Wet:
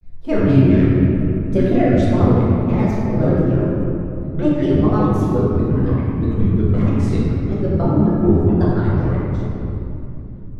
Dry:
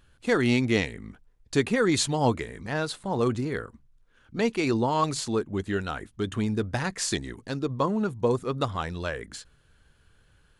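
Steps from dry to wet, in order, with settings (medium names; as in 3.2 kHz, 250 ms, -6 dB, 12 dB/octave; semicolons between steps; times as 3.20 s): tilt EQ -4.5 dB/octave; granulator, spray 10 ms, pitch spread up and down by 7 st; simulated room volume 130 m³, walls hard, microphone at 0.9 m; trim -5 dB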